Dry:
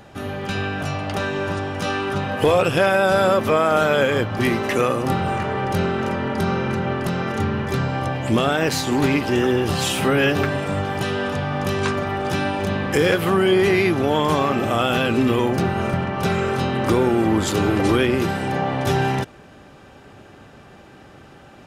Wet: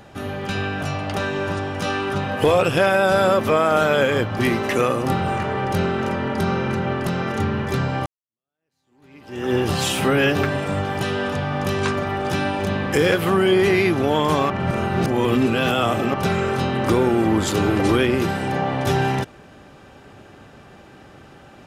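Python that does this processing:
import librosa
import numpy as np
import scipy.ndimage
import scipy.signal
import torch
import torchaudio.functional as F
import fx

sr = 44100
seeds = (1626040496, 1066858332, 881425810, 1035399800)

y = fx.edit(x, sr, fx.fade_in_span(start_s=8.06, length_s=1.48, curve='exp'),
    fx.reverse_span(start_s=14.5, length_s=1.64), tone=tone)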